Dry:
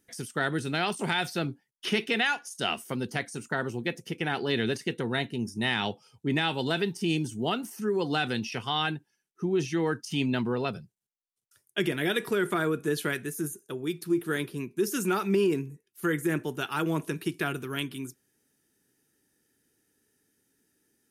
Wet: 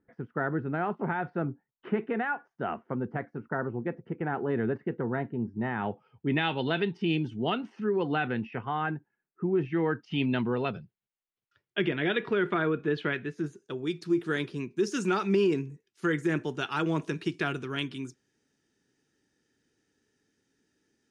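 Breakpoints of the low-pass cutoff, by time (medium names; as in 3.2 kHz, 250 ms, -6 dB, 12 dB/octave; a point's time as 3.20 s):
low-pass 24 dB/octave
5.74 s 1.5 kHz
6.42 s 3.3 kHz
7.76 s 3.3 kHz
8.67 s 1.8 kHz
9.48 s 1.8 kHz
10.21 s 3.4 kHz
13.19 s 3.4 kHz
13.85 s 6.5 kHz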